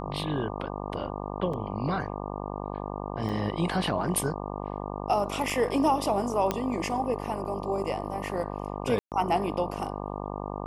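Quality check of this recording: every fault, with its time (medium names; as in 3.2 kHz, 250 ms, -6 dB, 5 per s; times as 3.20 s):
buzz 50 Hz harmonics 24 -35 dBFS
1.53 s: dropout 5 ms
3.29 s: dropout 3.7 ms
5.50 s: dropout 3.8 ms
6.51 s: pop -12 dBFS
8.99–9.12 s: dropout 128 ms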